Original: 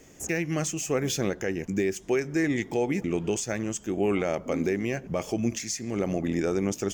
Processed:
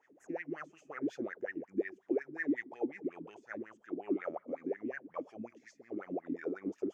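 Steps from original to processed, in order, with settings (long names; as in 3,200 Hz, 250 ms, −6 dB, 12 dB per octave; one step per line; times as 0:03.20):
LFO wah 5.5 Hz 260–1,900 Hz, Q 11
level +2 dB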